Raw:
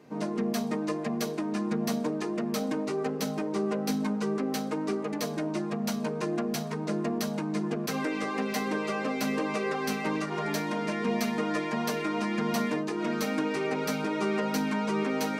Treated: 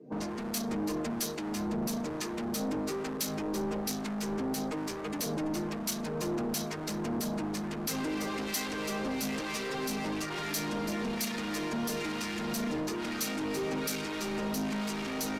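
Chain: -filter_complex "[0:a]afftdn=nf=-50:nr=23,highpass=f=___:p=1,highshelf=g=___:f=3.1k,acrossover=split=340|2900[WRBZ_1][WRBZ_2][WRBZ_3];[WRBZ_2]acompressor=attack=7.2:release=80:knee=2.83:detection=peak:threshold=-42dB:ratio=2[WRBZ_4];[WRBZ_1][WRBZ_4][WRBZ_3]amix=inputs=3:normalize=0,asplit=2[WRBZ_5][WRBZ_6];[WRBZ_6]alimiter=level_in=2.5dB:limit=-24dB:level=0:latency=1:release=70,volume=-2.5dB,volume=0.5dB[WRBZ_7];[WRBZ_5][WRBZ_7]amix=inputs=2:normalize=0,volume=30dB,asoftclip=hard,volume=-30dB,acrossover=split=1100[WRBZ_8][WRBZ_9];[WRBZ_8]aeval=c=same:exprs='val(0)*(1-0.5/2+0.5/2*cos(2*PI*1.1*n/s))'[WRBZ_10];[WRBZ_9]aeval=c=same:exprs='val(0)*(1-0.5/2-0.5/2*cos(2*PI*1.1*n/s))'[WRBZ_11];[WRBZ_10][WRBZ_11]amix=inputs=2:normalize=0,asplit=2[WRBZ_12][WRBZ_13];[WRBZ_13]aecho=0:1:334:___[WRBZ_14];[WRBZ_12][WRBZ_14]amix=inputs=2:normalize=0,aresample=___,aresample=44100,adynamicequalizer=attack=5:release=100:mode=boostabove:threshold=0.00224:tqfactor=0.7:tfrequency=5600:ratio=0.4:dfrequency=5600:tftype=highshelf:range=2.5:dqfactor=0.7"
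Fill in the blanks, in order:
110, 6.5, 0.237, 32000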